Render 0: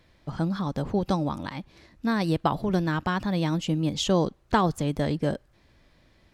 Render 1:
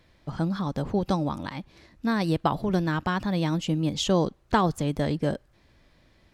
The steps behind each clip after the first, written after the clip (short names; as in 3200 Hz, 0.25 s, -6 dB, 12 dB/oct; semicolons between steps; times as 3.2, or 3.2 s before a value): nothing audible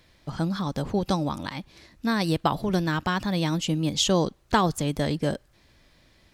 high shelf 2800 Hz +8 dB